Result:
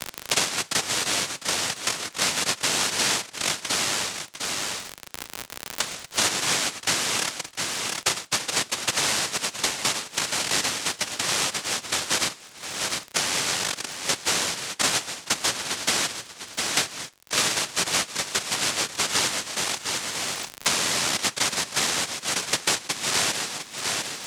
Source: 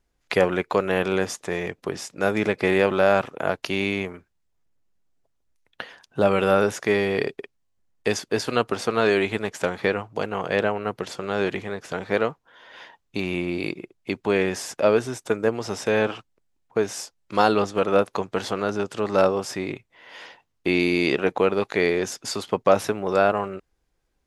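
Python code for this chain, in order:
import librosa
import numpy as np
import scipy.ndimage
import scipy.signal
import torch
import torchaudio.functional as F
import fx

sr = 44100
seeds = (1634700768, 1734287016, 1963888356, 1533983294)

y = fx.comb_fb(x, sr, f0_hz=150.0, decay_s=0.26, harmonics='all', damping=0.0, mix_pct=40)
y = fx.noise_vocoder(y, sr, seeds[0], bands=1)
y = fx.dmg_crackle(y, sr, seeds[1], per_s=58.0, level_db=-41.0)
y = y + 10.0 ** (-17.0 / 20.0) * np.pad(y, (int(702 * sr / 1000.0), 0))[:len(y)]
y = fx.band_squash(y, sr, depth_pct=100)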